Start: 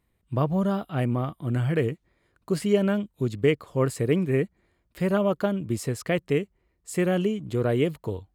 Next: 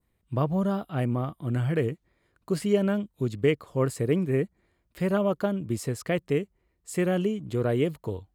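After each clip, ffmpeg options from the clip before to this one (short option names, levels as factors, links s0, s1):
-af "adynamicequalizer=threshold=0.00562:dfrequency=2600:dqfactor=0.94:tfrequency=2600:tqfactor=0.94:attack=5:release=100:ratio=0.375:range=2:mode=cutabove:tftype=bell,volume=0.841"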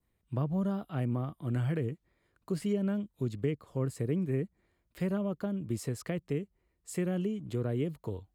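-filter_complex "[0:a]acrossover=split=310[s0][s1];[s1]acompressor=threshold=0.02:ratio=4[s2];[s0][s2]amix=inputs=2:normalize=0,volume=0.631"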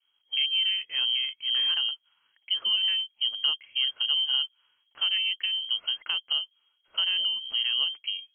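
-af "lowpass=f=2800:t=q:w=0.5098,lowpass=f=2800:t=q:w=0.6013,lowpass=f=2800:t=q:w=0.9,lowpass=f=2800:t=q:w=2.563,afreqshift=-3300,volume=1.68"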